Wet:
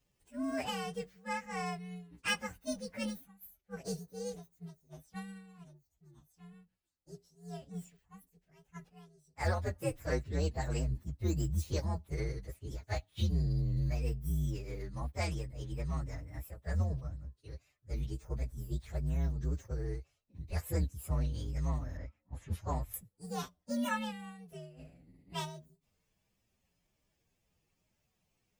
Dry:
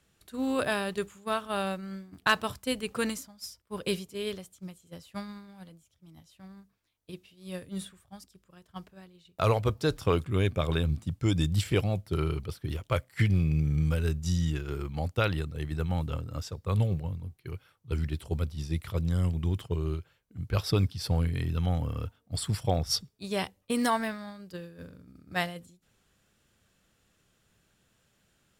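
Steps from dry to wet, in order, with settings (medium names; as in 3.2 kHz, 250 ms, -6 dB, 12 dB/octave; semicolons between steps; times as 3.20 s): frequency axis rescaled in octaves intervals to 128%; 21.97–22.94 s: level-controlled noise filter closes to 1.9 kHz, open at -25 dBFS; trim -5 dB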